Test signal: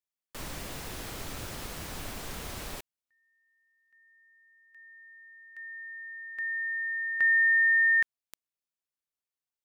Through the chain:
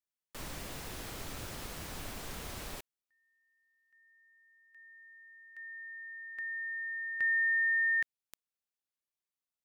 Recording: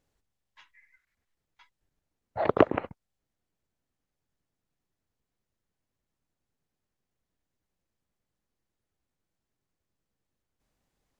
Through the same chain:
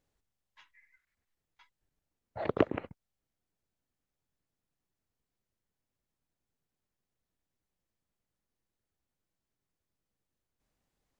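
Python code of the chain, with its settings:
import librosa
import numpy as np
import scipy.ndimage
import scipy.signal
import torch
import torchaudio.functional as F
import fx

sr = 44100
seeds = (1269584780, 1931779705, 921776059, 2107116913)

y = fx.dynamic_eq(x, sr, hz=920.0, q=0.79, threshold_db=-42.0, ratio=4.0, max_db=-7)
y = F.gain(torch.from_numpy(y), -3.5).numpy()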